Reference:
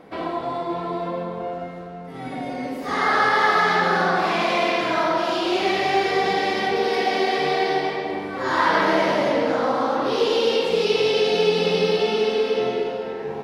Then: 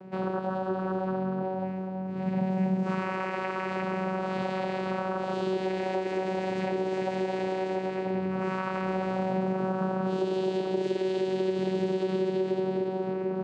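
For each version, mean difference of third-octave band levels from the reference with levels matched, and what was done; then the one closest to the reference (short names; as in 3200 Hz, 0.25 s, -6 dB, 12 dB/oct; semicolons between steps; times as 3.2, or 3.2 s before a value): 6.5 dB: low shelf 220 Hz +3.5 dB; compressor, threshold -25 dBFS, peak gain reduction 11.5 dB; vocoder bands 8, saw 188 Hz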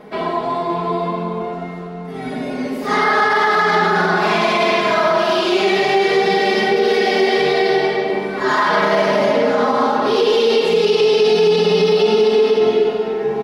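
2.5 dB: bell 400 Hz +2 dB; comb 4.8 ms, depth 88%; maximiser +9.5 dB; gain -5.5 dB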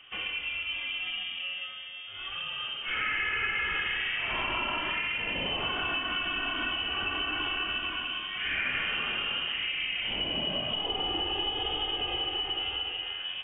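11.5 dB: inverted band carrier 3400 Hz; compressor 4:1, threshold -23 dBFS, peak gain reduction 8 dB; high shelf 2500 Hz -12 dB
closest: second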